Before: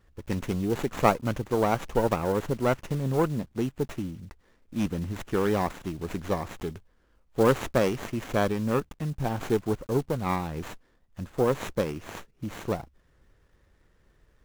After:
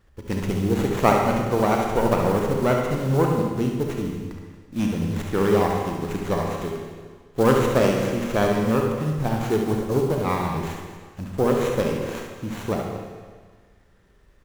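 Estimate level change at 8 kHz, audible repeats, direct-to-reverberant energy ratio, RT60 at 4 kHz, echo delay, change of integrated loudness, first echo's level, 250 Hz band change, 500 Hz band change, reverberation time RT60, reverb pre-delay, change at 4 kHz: +5.0 dB, 2, 0.0 dB, 1.5 s, 72 ms, +5.5 dB, -7.5 dB, +6.0 dB, +5.5 dB, 1.6 s, 30 ms, +5.5 dB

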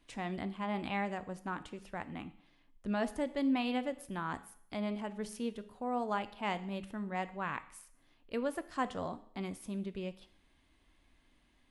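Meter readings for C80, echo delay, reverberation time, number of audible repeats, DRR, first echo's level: 18.5 dB, none, 0.65 s, none, 12.0 dB, none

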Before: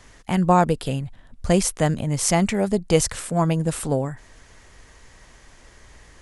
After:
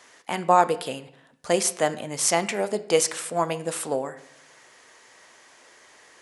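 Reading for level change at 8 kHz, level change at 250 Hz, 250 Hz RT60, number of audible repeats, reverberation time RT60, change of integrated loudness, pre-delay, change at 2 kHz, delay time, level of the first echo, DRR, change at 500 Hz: 0.0 dB, -10.5 dB, 0.90 s, none, 0.70 s, -2.5 dB, 6 ms, +0.5 dB, none, none, 11.0 dB, -1.0 dB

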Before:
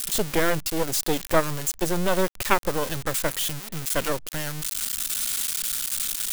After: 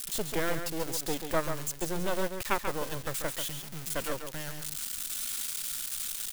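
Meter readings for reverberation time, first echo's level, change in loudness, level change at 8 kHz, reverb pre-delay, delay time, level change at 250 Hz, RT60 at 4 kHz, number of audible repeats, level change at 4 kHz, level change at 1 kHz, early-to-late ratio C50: none, -7.5 dB, -8.0 dB, -8.0 dB, none, 0.138 s, -8.0 dB, none, 1, -8.0 dB, -8.0 dB, none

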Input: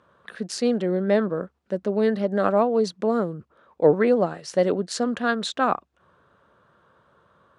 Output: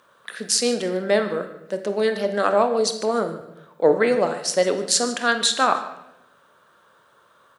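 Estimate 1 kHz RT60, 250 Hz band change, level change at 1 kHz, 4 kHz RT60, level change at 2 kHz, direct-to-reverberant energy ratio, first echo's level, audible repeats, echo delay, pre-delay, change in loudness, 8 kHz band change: 0.75 s, -3.5 dB, +3.5 dB, 0.70 s, +5.5 dB, 7.0 dB, -18.0 dB, 2, 0.149 s, 23 ms, +2.0 dB, +14.5 dB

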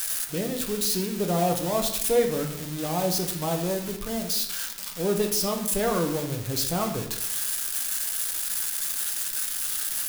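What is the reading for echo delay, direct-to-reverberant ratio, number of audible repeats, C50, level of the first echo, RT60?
none, 2.5 dB, none, 8.5 dB, none, 0.75 s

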